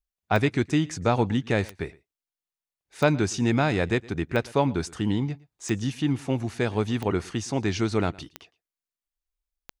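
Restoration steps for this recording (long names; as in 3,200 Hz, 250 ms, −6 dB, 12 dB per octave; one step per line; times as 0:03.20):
click removal
echo removal 114 ms −23 dB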